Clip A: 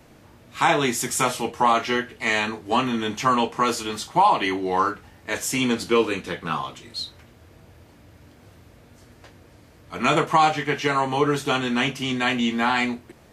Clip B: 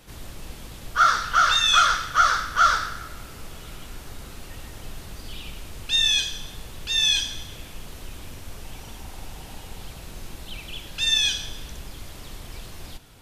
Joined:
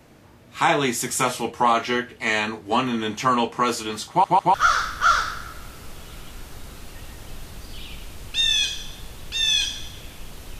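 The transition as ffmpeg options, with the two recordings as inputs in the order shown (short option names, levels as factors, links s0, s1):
-filter_complex "[0:a]apad=whole_dur=10.59,atrim=end=10.59,asplit=3[s0][s1][s2];[s0]atrim=end=4.242[s3];[s1]atrim=start=4.088:end=4.242[s4];[s2]atrim=start=4.088:end=4.242[s5];[1:a]atrim=start=2.088:end=8.14[s6];[s3][s4]acrossfade=d=0.004:c1=hsin:c2=hsin[s7];[s7][s5]acrossfade=d=0.004:c1=hsin:c2=hsin[s8];[s8][s6]acrossfade=d=0.004:c1=hsin:c2=hsin"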